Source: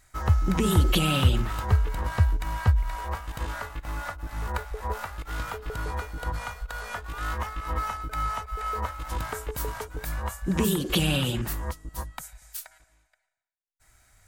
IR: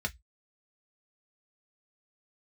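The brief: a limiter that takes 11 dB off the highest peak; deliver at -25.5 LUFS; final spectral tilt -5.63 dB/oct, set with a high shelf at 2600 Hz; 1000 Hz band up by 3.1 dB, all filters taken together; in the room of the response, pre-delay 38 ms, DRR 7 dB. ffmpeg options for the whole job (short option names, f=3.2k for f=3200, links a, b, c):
-filter_complex "[0:a]equalizer=f=1k:t=o:g=5.5,highshelf=f=2.6k:g=-8,alimiter=limit=-19dB:level=0:latency=1,asplit=2[a][b];[1:a]atrim=start_sample=2205,adelay=38[c];[b][c]afir=irnorm=-1:irlink=0,volume=-11.5dB[d];[a][d]amix=inputs=2:normalize=0,volume=2.5dB"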